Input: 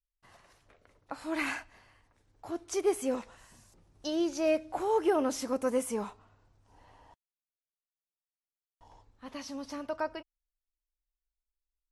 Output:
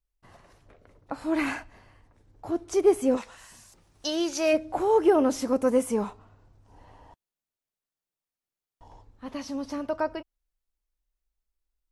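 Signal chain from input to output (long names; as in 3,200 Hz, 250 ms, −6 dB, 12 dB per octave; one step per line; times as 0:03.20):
tilt shelving filter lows +5 dB, about 830 Hz, from 0:03.16 lows −4.5 dB, from 0:04.52 lows +3.5 dB
level +5 dB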